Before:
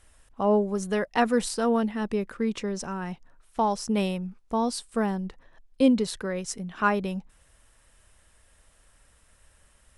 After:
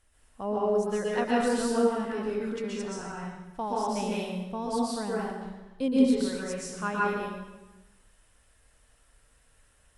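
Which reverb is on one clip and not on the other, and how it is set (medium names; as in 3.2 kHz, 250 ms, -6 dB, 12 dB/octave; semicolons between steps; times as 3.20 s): plate-style reverb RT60 1.1 s, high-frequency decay 0.85×, pre-delay 110 ms, DRR -6 dB; trim -9.5 dB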